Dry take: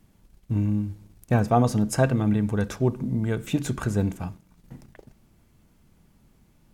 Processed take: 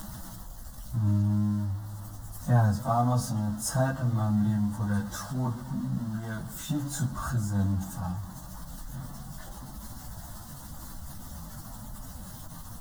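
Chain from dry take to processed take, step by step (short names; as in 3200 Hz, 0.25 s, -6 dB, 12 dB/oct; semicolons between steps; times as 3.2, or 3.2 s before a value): zero-crossing step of -31.5 dBFS; plain phase-vocoder stretch 1.9×; fixed phaser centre 1000 Hz, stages 4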